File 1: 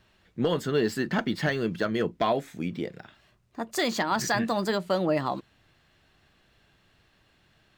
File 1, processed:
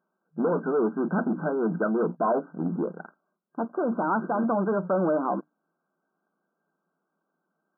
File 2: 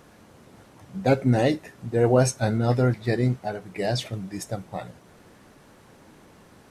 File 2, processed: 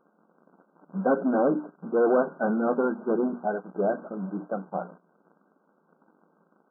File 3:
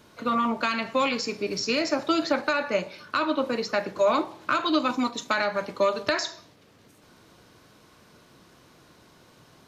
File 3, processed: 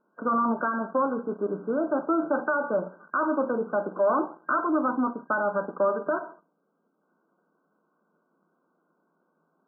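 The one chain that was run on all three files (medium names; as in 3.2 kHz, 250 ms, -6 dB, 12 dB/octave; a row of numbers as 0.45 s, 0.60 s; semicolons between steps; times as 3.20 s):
hum notches 60/120/180/240/300 Hz; waveshaping leveller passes 3; FFT band-pass 160–1600 Hz; normalise loudness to -27 LUFS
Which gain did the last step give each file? -4.5 dB, -8.0 dB, -9.0 dB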